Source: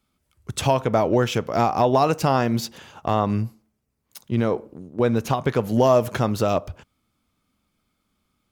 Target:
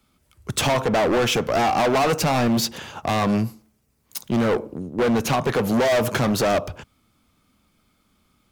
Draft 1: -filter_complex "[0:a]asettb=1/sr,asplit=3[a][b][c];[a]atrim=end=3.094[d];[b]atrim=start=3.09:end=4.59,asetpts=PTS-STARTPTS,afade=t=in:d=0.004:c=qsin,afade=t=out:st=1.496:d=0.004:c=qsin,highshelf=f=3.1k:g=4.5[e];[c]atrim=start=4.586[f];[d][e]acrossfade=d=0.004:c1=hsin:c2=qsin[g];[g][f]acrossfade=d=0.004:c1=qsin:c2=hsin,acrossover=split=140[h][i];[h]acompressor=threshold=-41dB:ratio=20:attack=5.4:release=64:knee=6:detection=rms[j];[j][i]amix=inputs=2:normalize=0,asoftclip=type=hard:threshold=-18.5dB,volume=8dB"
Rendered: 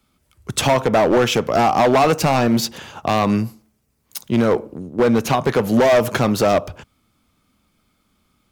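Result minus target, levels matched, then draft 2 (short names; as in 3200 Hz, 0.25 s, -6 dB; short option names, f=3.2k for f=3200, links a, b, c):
hard clip: distortion -4 dB
-filter_complex "[0:a]asettb=1/sr,asplit=3[a][b][c];[a]atrim=end=3.094[d];[b]atrim=start=3.09:end=4.59,asetpts=PTS-STARTPTS,afade=t=in:d=0.004:c=qsin,afade=t=out:st=1.496:d=0.004:c=qsin,highshelf=f=3.1k:g=4.5[e];[c]atrim=start=4.586[f];[d][e]acrossfade=d=0.004:c1=hsin:c2=qsin[g];[g][f]acrossfade=d=0.004:c1=qsin:c2=hsin,acrossover=split=140[h][i];[h]acompressor=threshold=-41dB:ratio=20:attack=5.4:release=64:knee=6:detection=rms[j];[j][i]amix=inputs=2:normalize=0,asoftclip=type=hard:threshold=-25dB,volume=8dB"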